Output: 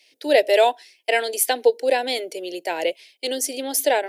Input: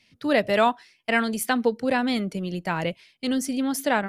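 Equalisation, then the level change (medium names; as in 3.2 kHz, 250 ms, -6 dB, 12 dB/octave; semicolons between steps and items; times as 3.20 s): high-pass 320 Hz 24 dB/octave; treble shelf 11 kHz +6.5 dB; static phaser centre 500 Hz, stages 4; +7.0 dB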